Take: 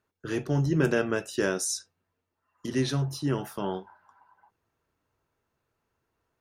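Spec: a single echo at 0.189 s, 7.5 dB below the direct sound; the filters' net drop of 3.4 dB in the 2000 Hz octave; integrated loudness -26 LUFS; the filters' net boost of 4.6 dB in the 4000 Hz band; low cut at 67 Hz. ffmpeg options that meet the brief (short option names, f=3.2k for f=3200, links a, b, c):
-af "highpass=67,equalizer=f=2k:t=o:g=-6.5,equalizer=f=4k:t=o:g=7.5,aecho=1:1:189:0.422,volume=2dB"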